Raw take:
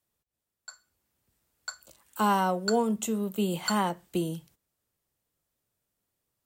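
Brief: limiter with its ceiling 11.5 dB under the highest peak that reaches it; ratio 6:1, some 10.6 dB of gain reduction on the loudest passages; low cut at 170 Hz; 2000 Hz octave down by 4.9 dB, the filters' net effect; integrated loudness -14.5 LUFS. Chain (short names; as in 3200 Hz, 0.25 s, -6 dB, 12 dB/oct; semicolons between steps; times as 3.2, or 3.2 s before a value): HPF 170 Hz; bell 2000 Hz -8 dB; compressor 6:1, threshold -33 dBFS; gain +28 dB; limiter -4 dBFS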